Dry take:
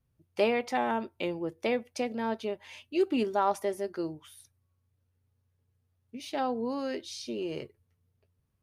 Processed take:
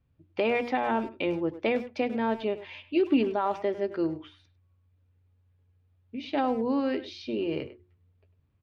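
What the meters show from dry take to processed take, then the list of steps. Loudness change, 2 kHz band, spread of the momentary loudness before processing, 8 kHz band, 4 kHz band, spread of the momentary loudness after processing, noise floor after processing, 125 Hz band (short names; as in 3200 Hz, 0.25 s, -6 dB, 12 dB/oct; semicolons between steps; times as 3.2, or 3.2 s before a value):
+3.0 dB, +3.0 dB, 14 LU, under -10 dB, +0.5 dB, 11 LU, -68 dBFS, +4.0 dB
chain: LPF 3800 Hz 24 dB/oct; bell 85 Hz +6 dB 0.7 oct; notches 60/120/180/240/300/360 Hz; limiter -21.5 dBFS, peak gain reduction 7.5 dB; small resonant body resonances 290/2400 Hz, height 6 dB, ringing for 40 ms; speakerphone echo 0.1 s, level -13 dB; gain +3.5 dB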